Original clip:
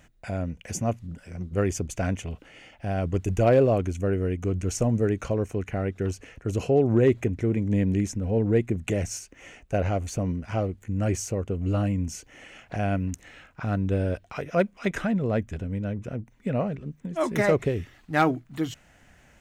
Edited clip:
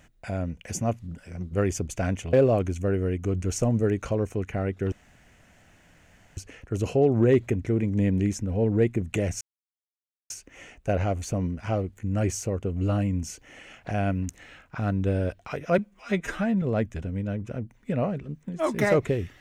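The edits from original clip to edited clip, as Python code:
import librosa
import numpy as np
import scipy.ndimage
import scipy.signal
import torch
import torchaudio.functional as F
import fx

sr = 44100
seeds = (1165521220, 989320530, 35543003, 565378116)

y = fx.edit(x, sr, fx.cut(start_s=2.33, length_s=1.19),
    fx.insert_room_tone(at_s=6.11, length_s=1.45),
    fx.insert_silence(at_s=9.15, length_s=0.89),
    fx.stretch_span(start_s=14.63, length_s=0.56, factor=1.5), tone=tone)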